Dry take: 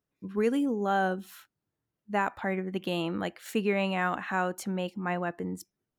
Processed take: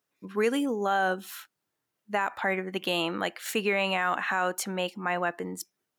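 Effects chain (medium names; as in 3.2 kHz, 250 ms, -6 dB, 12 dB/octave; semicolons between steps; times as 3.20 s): high-pass 190 Hz 6 dB/octave; bass shelf 470 Hz -10.5 dB; peak limiter -24 dBFS, peak gain reduction 7.5 dB; trim +8.5 dB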